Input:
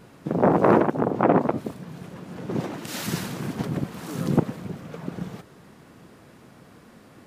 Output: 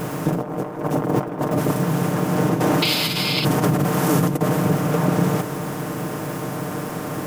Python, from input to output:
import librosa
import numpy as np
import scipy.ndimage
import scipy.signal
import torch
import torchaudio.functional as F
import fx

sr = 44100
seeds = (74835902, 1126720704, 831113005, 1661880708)

p1 = fx.bin_compress(x, sr, power=0.6)
p2 = fx.dmg_crackle(p1, sr, seeds[0], per_s=450.0, level_db=-41.0)
p3 = fx.high_shelf(p2, sr, hz=11000.0, db=10.5)
p4 = np.clip(10.0 ** (18.0 / 20.0) * p3, -1.0, 1.0) / 10.0 ** (18.0 / 20.0)
p5 = p3 + (p4 * 10.0 ** (-3.5 / 20.0))
p6 = fx.peak_eq(p5, sr, hz=4100.0, db=-6.0, octaves=0.44)
p7 = fx.spec_paint(p6, sr, seeds[1], shape='noise', start_s=2.82, length_s=0.63, low_hz=2000.0, high_hz=5300.0, level_db=-19.0)
p8 = fx.over_compress(p7, sr, threshold_db=-19.0, ratio=-0.5)
p9 = p8 + 0.65 * np.pad(p8, (int(6.6 * sr / 1000.0), 0))[:len(p8)]
y = p9 * 10.0 ** (-1.5 / 20.0)